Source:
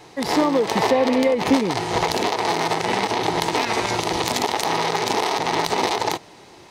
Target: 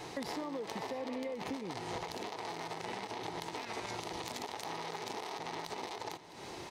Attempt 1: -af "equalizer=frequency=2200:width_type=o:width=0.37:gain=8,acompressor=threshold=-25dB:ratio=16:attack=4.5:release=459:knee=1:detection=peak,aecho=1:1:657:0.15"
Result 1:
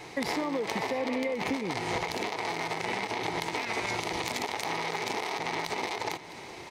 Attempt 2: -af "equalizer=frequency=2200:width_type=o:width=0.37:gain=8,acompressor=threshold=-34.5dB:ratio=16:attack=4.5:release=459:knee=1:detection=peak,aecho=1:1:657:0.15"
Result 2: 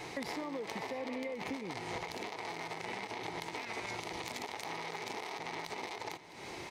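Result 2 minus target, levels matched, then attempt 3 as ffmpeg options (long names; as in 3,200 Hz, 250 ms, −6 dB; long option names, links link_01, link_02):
2,000 Hz band +3.5 dB
-af "acompressor=threshold=-34.5dB:ratio=16:attack=4.5:release=459:knee=1:detection=peak,aecho=1:1:657:0.15"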